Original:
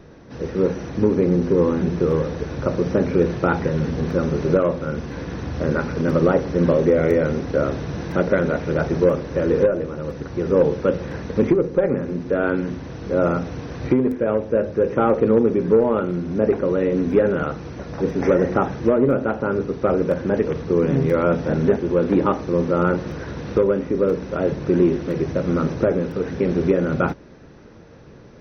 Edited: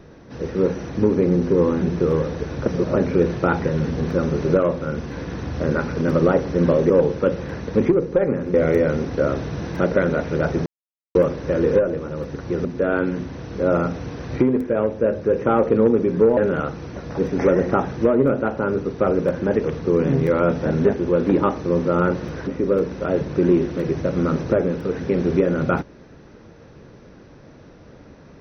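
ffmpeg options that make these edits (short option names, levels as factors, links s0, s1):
-filter_complex "[0:a]asplit=9[s0][s1][s2][s3][s4][s5][s6][s7][s8];[s0]atrim=end=2.662[s9];[s1]atrim=start=2.658:end=2.962,asetpts=PTS-STARTPTS,areverse[s10];[s2]atrim=start=2.958:end=6.902[s11];[s3]atrim=start=10.518:end=12.162[s12];[s4]atrim=start=6.898:end=9.02,asetpts=PTS-STARTPTS,afade=t=out:st=2.118:d=0.004:c=hsin,apad=pad_dur=0.49[s13];[s5]atrim=start=9.02:end=10.522,asetpts=PTS-STARTPTS,afade=t=in:d=0.004:c=hsin[s14];[s6]atrim=start=12.158:end=15.882[s15];[s7]atrim=start=17.198:end=23.302[s16];[s8]atrim=start=23.778[s17];[s9][s10]acrossfade=d=0.004:c1=hsin:c2=hsin[s18];[s18][s11]acrossfade=d=0.004:c1=hsin:c2=hsin[s19];[s19][s12]acrossfade=d=0.004:c1=hsin:c2=hsin[s20];[s13][s14]concat=n=2:v=0:a=1[s21];[s20][s21]acrossfade=d=0.004:c1=hsin:c2=hsin[s22];[s22][s15]acrossfade=d=0.004:c1=hsin:c2=hsin[s23];[s23][s16]acrossfade=d=0.004:c1=hsin:c2=hsin[s24];[s24][s17]acrossfade=d=0.004:c1=hsin:c2=hsin"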